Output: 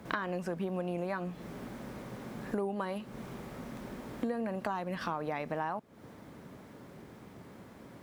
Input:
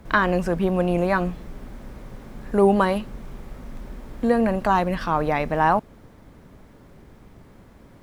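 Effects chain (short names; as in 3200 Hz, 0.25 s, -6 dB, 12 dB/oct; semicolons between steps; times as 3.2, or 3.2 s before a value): HPF 130 Hz 12 dB/oct; compressor 8:1, threshold -32 dBFS, peak gain reduction 19 dB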